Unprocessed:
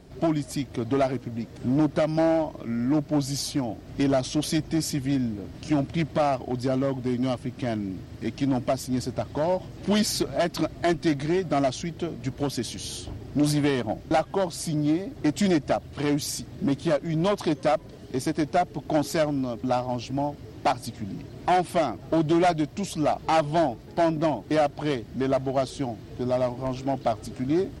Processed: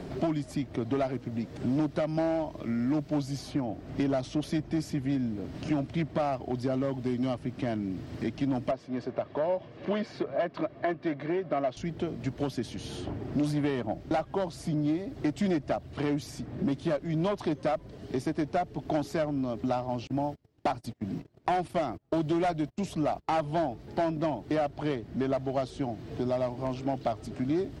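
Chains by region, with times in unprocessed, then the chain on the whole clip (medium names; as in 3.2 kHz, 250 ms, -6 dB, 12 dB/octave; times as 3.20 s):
8.71–11.77 s: band-pass 250–2300 Hz + comb 1.8 ms, depth 32%
20.07–23.56 s: treble shelf 7.8 kHz +6 dB + gate -37 dBFS, range -32 dB
whole clip: treble shelf 4.6 kHz -10 dB; three bands compressed up and down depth 70%; trim -5 dB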